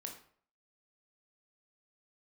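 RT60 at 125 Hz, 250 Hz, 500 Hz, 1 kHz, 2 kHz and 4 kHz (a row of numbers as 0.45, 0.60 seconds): 0.55, 0.50, 0.55, 0.50, 0.45, 0.40 seconds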